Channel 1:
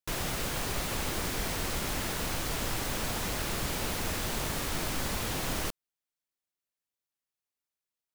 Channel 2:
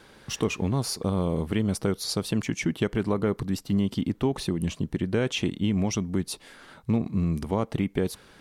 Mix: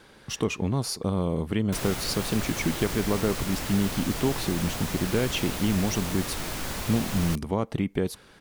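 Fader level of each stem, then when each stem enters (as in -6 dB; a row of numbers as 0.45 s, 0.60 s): 0.0 dB, -0.5 dB; 1.65 s, 0.00 s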